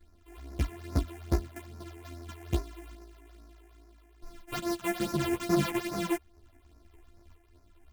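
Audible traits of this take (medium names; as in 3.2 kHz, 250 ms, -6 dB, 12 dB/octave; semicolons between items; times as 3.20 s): a buzz of ramps at a fixed pitch in blocks of 128 samples; phasing stages 8, 2.4 Hz, lowest notch 150–3200 Hz; tremolo saw up 0.68 Hz, depth 40%; a shimmering, thickened sound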